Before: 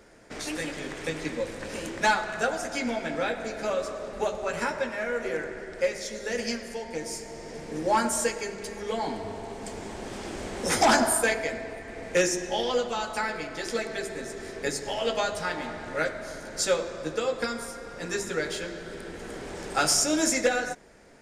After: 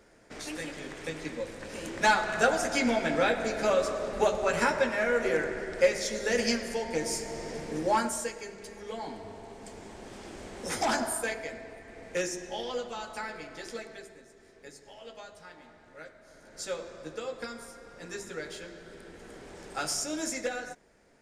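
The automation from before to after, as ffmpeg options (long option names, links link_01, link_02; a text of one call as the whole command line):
ffmpeg -i in.wav -af "volume=13dB,afade=type=in:start_time=1.75:duration=0.72:silence=0.398107,afade=type=out:start_time=7.4:duration=0.84:silence=0.281838,afade=type=out:start_time=13.6:duration=0.64:silence=0.281838,afade=type=in:start_time=16.24:duration=0.62:silence=0.316228" out.wav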